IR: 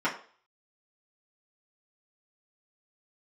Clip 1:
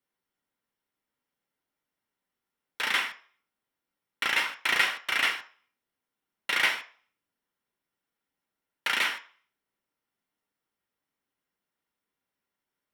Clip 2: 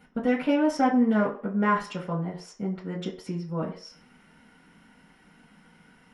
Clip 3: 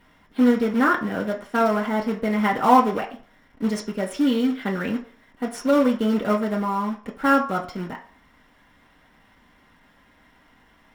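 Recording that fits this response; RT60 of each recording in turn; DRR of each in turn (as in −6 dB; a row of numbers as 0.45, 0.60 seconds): 2; 0.45, 0.45, 0.45 seconds; 2.5, −9.0, −3.0 decibels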